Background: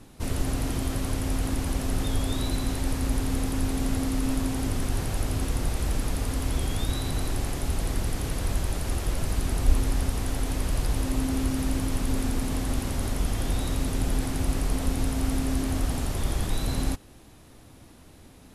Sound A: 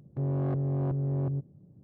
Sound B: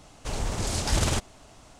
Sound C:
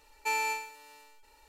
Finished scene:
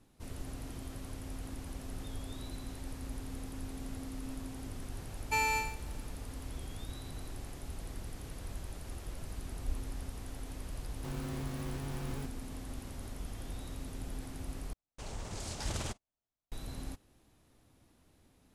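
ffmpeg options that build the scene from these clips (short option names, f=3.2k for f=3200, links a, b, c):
-filter_complex "[0:a]volume=-15.5dB[a];[3:a]agate=range=-6dB:threshold=-48dB:ratio=16:release=100:detection=peak[b];[1:a]acrusher=bits=4:mix=0:aa=0.000001[c];[2:a]agate=range=-34dB:threshold=-40dB:ratio=16:release=100:detection=peak[d];[a]asplit=2[e][f];[e]atrim=end=14.734[g];[d]atrim=end=1.79,asetpts=PTS-STARTPTS,volume=-12.5dB[h];[f]atrim=start=16.516[i];[b]atrim=end=1.48,asetpts=PTS-STARTPTS,volume=-0.5dB,afade=t=in:d=0.004:c=hsin,afade=t=out:st=1.476:d=0.004:c=hsin,adelay=5060[j];[c]atrim=end=1.83,asetpts=PTS-STARTPTS,volume=-15dB,afade=t=in:d=0.004:c=hsin,afade=t=out:st=1.826:d=0.004:c=hsin,adelay=10860[k];[g][h]acrossfade=d=0.004:c1=hsin:c2=hsin[l];[l][i]acrossfade=d=0.004:c1=hsin:c2=hsin[m];[m][j][k]amix=inputs=3:normalize=0"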